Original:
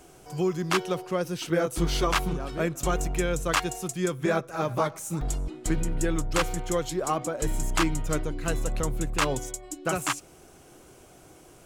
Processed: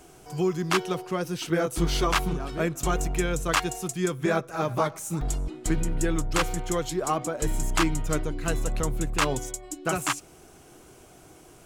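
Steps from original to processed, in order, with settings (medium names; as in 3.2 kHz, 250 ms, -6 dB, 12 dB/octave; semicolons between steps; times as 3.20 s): band-stop 540 Hz, Q 12; trim +1 dB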